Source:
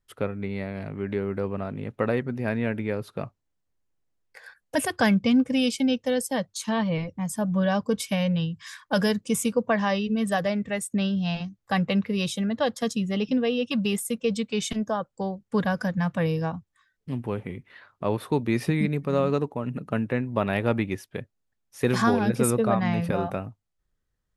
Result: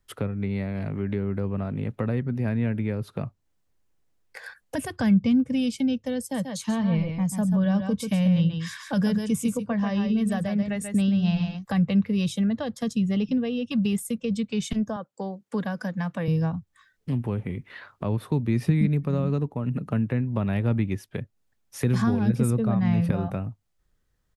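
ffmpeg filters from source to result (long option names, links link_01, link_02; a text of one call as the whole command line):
ffmpeg -i in.wav -filter_complex "[0:a]asplit=3[link_01][link_02][link_03];[link_01]afade=type=out:start_time=6.33:duration=0.02[link_04];[link_02]aecho=1:1:137:0.422,afade=type=in:start_time=6.33:duration=0.02,afade=type=out:start_time=11.63:duration=0.02[link_05];[link_03]afade=type=in:start_time=11.63:duration=0.02[link_06];[link_04][link_05][link_06]amix=inputs=3:normalize=0,asettb=1/sr,asplit=3[link_07][link_08][link_09];[link_07]atrim=end=14.964[link_10];[link_08]atrim=start=14.96:end=16.28,asetpts=PTS-STARTPTS,afade=type=in:duration=0.004:curve=qsin,afade=type=out:start_time=1.316:duration=0.004:curve=qsin,highpass=260[link_11];[link_09]atrim=start=16.276[link_12];[link_10][link_11]acrossfade=duration=0.004:curve1=hsin:curve2=qsin[link_13];[link_13][link_12]acrossfade=duration=0.004:curve1=qsin:curve2=hsin,acrossover=split=210[link_14][link_15];[link_15]acompressor=threshold=-42dB:ratio=3[link_16];[link_14][link_16]amix=inputs=2:normalize=0,volume=6.5dB" out.wav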